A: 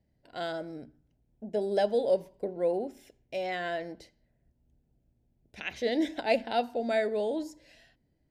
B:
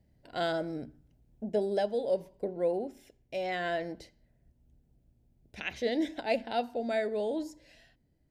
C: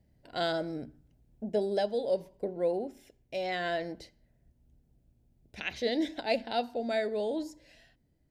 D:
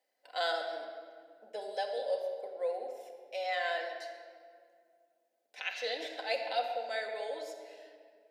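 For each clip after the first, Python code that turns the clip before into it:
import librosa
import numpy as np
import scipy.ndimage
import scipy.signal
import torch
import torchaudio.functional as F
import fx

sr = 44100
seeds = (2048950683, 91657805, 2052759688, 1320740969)

y1 = fx.low_shelf(x, sr, hz=170.0, db=4.0)
y1 = fx.rider(y1, sr, range_db=5, speed_s=0.5)
y1 = y1 * librosa.db_to_amplitude(-1.5)
y2 = fx.dynamic_eq(y1, sr, hz=4300.0, q=2.3, threshold_db=-57.0, ratio=4.0, max_db=6)
y3 = fx.rider(y2, sr, range_db=3, speed_s=2.0)
y3 = scipy.signal.sosfilt(scipy.signal.butter(4, 570.0, 'highpass', fs=sr, output='sos'), y3)
y3 = fx.room_shoebox(y3, sr, seeds[0], volume_m3=3800.0, walls='mixed', distance_m=2.0)
y3 = y3 * librosa.db_to_amplitude(-2.0)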